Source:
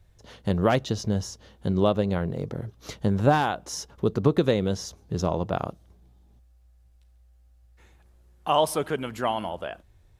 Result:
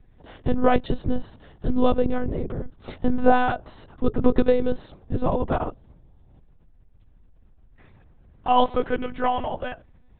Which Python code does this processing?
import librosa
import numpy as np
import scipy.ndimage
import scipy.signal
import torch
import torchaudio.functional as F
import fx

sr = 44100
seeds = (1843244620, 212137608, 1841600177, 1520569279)

y = fx.lpc_monotone(x, sr, seeds[0], pitch_hz=250.0, order=10)
y = fx.lowpass(y, sr, hz=1900.0, slope=6)
y = y * librosa.db_to_amplitude(4.5)